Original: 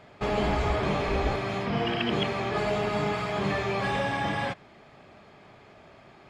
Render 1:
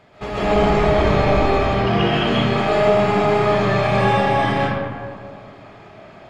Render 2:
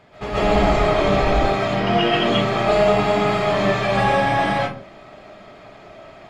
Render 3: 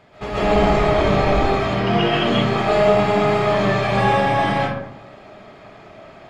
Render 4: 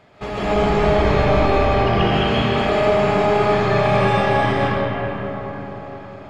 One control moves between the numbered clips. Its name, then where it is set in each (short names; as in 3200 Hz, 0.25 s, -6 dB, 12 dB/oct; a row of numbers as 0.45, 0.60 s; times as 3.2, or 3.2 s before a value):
digital reverb, RT60: 2.1, 0.43, 0.96, 4.9 s